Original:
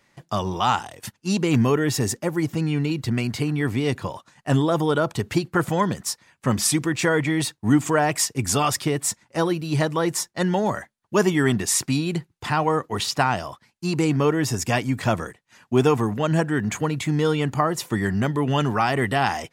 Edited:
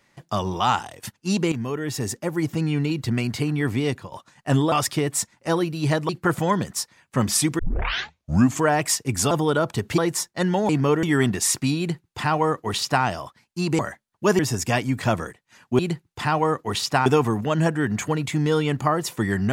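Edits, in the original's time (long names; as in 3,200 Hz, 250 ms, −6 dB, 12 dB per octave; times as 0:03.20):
0:01.52–0:02.50: fade in, from −12.5 dB
0:03.85–0:04.12: fade out, to −16 dB
0:04.72–0:05.39: swap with 0:08.61–0:09.98
0:06.89: tape start 1.00 s
0:10.69–0:11.29: swap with 0:14.05–0:14.39
0:12.04–0:13.31: duplicate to 0:15.79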